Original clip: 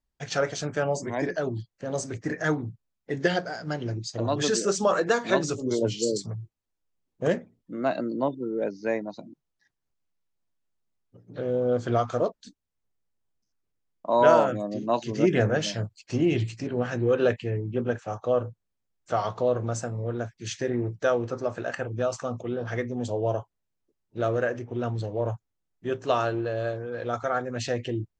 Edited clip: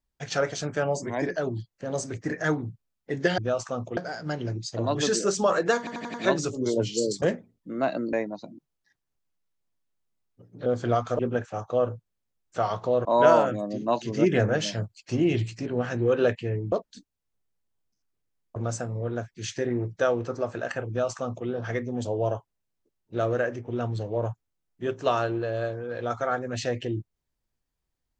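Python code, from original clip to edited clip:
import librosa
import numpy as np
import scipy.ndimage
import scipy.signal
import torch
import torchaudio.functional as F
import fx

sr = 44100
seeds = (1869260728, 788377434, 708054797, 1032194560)

y = fx.edit(x, sr, fx.stutter(start_s=5.19, slice_s=0.09, count=5),
    fx.cut(start_s=6.27, length_s=0.98),
    fx.cut(start_s=8.16, length_s=0.72),
    fx.cut(start_s=11.41, length_s=0.28),
    fx.swap(start_s=12.22, length_s=1.84, other_s=17.73, other_length_s=1.86),
    fx.duplicate(start_s=21.91, length_s=0.59, to_s=3.38), tone=tone)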